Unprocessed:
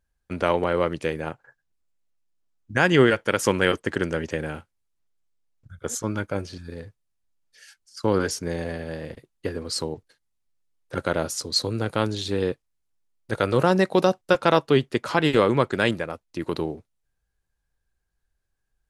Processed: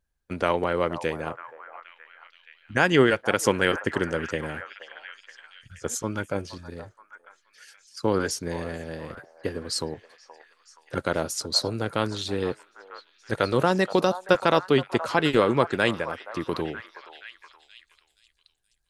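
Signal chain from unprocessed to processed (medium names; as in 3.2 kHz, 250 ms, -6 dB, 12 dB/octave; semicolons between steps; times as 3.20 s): harmonic-percussive split harmonic -4 dB; repeats whose band climbs or falls 474 ms, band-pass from 860 Hz, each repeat 0.7 oct, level -9.5 dB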